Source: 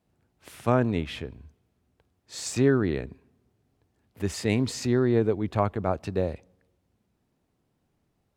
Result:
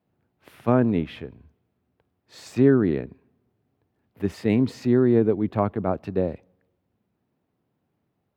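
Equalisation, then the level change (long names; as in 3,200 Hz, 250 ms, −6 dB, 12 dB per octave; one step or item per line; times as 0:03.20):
high-pass filter 94 Hz
parametric band 7,600 Hz −14.5 dB 1.5 octaves
dynamic equaliser 240 Hz, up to +6 dB, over −34 dBFS, Q 0.7
0.0 dB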